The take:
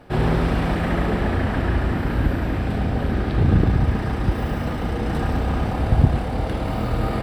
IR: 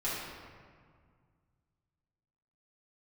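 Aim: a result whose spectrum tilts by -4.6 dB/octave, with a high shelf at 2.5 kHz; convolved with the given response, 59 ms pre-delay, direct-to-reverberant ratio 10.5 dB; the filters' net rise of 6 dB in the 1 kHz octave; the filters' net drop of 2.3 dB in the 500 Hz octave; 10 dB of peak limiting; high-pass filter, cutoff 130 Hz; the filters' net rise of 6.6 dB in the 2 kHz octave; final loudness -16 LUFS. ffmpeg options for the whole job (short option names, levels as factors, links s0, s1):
-filter_complex "[0:a]highpass=130,equalizer=f=500:t=o:g=-6,equalizer=f=1000:t=o:g=8.5,equalizer=f=2000:t=o:g=3.5,highshelf=f=2500:g=5,alimiter=limit=0.2:level=0:latency=1,asplit=2[s0][s1];[1:a]atrim=start_sample=2205,adelay=59[s2];[s1][s2]afir=irnorm=-1:irlink=0,volume=0.141[s3];[s0][s3]amix=inputs=2:normalize=0,volume=2.51"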